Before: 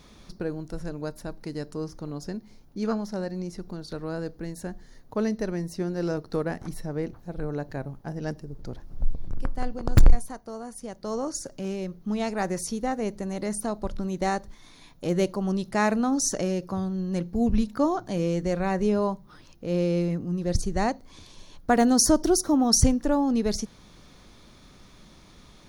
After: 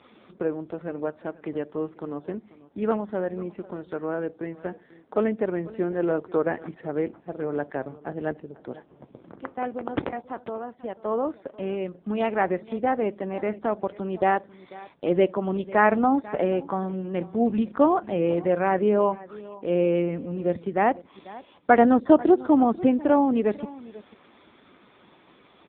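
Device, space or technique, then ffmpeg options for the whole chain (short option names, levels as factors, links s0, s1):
satellite phone: -filter_complex "[0:a]asettb=1/sr,asplit=3[s0][s1][s2];[s0]atrim=end=15.934[s3];[s1]atrim=start=15.93:end=17.79,asetpts=PTS-STARTPTS,afade=t=in:d=0.004:c=qsin,afade=t=out:st=1.856:d=0.004:c=qsin,equalizer=f=820:w=4.7:g=5[s4];[s2]atrim=start=17.786[s5];[s3][s4]acrossfade=d=0.004:c1=hsin:c2=qsin[s6];[s6][s5]acrossfade=d=0.004:c1=qsin:c2=hsin,highpass=300,lowpass=3300,aecho=1:1:492:0.106,volume=2.11" -ar 8000 -c:a libopencore_amrnb -b:a 5900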